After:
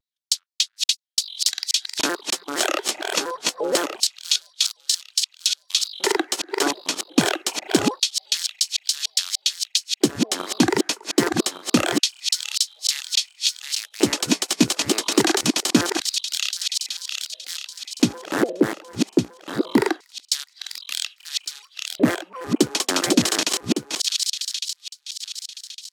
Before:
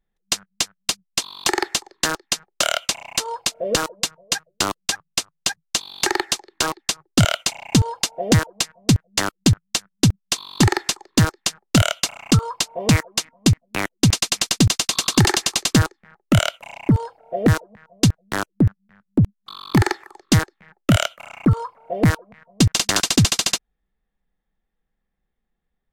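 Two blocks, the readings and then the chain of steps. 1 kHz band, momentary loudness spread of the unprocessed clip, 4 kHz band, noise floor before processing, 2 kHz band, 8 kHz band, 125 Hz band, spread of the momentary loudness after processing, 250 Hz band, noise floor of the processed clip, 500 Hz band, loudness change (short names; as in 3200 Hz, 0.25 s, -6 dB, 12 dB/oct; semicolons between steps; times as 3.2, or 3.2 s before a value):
-3.0 dB, 8 LU, +1.5 dB, -76 dBFS, -3.0 dB, -0.5 dB, -16.5 dB, 9 LU, -2.0 dB, -62 dBFS, +1.0 dB, -1.5 dB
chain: regenerating reverse delay 0.579 s, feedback 57%, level -4 dB; LFO high-pass square 0.25 Hz 320–4000 Hz; shaped vibrato square 4.3 Hz, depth 160 cents; gain -3.5 dB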